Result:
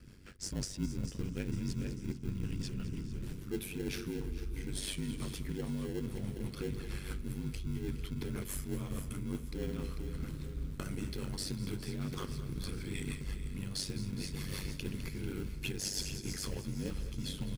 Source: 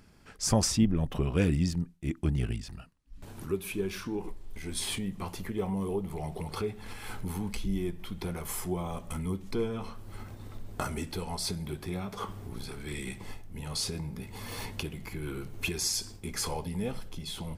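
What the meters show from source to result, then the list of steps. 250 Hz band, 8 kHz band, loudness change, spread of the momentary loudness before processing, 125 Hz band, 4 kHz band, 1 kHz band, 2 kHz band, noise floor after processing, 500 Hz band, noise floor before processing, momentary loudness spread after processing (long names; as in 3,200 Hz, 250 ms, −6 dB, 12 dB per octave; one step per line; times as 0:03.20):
−5.5 dB, −7.5 dB, −6.0 dB, 15 LU, −4.0 dB, −6.0 dB, −13.5 dB, −6.0 dB, −45 dBFS, −8.0 dB, −50 dBFS, 4 LU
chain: ring modulation 48 Hz
repeating echo 446 ms, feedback 57%, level −15 dB
rotating-speaker cabinet horn 6.3 Hz
in parallel at −8.5 dB: sample-rate reduction 1,200 Hz, jitter 0%
on the sum: parametric band 770 Hz −11.5 dB 0.99 octaves
echo with a time of its own for lows and highs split 400 Hz, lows 491 ms, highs 207 ms, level −15 dB
reversed playback
downward compressor 5 to 1, threshold −41 dBFS, peak gain reduction 20 dB
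reversed playback
level +6.5 dB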